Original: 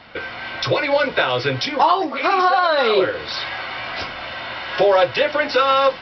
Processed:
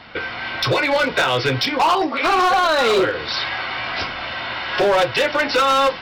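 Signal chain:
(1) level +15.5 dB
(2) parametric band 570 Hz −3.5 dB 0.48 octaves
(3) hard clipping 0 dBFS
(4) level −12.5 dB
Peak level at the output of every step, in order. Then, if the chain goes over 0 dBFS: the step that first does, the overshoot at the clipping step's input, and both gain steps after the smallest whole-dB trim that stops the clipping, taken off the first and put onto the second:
+10.0, +9.5, 0.0, −12.5 dBFS
step 1, 9.5 dB
step 1 +5.5 dB, step 4 −2.5 dB

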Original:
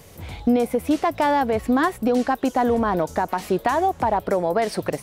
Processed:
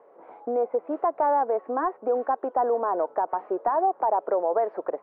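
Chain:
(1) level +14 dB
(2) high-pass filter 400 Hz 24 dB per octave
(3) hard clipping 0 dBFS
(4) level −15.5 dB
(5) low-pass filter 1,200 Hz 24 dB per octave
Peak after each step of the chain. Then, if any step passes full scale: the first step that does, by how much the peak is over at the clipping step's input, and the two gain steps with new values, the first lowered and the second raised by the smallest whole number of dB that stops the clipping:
+7.5, +5.0, 0.0, −15.5, −14.0 dBFS
step 1, 5.0 dB
step 1 +9 dB, step 4 −10.5 dB

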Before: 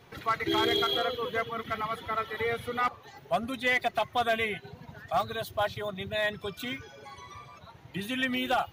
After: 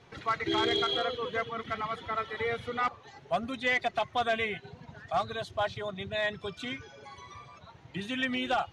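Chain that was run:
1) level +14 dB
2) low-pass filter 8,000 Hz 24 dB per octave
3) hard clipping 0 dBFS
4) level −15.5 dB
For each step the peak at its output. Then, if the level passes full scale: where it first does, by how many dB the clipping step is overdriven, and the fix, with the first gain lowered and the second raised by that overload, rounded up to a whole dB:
−6.0, −5.0, −5.0, −20.5 dBFS
no step passes full scale

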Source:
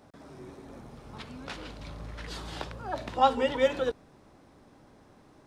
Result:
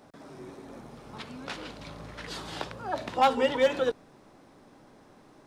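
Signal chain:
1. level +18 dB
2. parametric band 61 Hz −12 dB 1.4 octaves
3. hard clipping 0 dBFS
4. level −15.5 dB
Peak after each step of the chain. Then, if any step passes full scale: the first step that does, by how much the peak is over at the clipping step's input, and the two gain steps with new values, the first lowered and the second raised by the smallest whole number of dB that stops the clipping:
+7.5, +7.5, 0.0, −15.5 dBFS
step 1, 7.5 dB
step 1 +10 dB, step 4 −7.5 dB

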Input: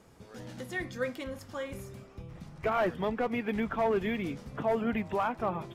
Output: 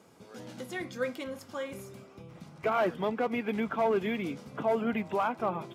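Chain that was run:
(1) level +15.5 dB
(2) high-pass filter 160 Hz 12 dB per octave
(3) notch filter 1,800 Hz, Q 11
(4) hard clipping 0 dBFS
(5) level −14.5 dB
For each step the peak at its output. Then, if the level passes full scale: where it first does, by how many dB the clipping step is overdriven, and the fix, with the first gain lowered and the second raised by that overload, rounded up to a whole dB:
−3.5, −3.5, −3.5, −3.5, −18.0 dBFS
no step passes full scale

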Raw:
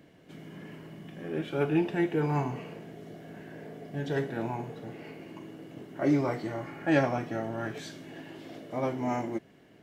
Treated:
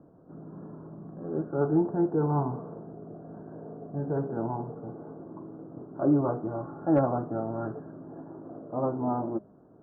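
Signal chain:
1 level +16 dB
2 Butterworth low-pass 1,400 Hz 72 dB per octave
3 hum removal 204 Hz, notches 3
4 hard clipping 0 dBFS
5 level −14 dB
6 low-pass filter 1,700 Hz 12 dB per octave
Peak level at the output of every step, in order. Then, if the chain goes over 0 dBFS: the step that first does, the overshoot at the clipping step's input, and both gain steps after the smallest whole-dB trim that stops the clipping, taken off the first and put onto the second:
+5.5, +4.0, +4.0, 0.0, −14.0, −13.5 dBFS
step 1, 4.0 dB
step 1 +12 dB, step 5 −10 dB

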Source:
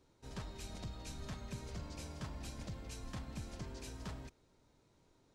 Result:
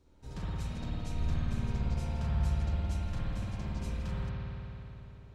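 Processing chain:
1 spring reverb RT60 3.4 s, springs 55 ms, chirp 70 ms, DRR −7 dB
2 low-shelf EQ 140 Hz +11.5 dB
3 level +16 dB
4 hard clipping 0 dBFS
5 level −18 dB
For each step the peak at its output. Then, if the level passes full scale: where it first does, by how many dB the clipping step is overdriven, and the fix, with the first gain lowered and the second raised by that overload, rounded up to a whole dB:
−25.5, −19.0, −3.0, −3.0, −21.0 dBFS
no step passes full scale

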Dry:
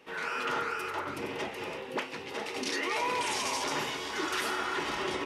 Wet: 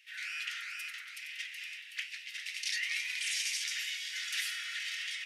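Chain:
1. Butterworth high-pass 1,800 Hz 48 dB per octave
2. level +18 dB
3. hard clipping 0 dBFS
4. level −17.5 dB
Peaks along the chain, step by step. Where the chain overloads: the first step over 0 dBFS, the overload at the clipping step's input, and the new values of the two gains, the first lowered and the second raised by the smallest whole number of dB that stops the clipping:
−20.5, −2.5, −2.5, −20.0 dBFS
no step passes full scale

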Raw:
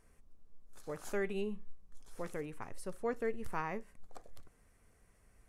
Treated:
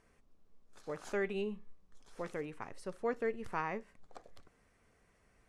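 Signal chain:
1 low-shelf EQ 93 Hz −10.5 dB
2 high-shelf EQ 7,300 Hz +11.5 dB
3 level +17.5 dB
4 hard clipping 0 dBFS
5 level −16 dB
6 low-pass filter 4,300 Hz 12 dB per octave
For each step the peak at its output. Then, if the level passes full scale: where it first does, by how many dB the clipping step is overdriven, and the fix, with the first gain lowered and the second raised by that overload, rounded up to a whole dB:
−23.0, −22.5, −5.0, −5.0, −21.0, −21.0 dBFS
no step passes full scale

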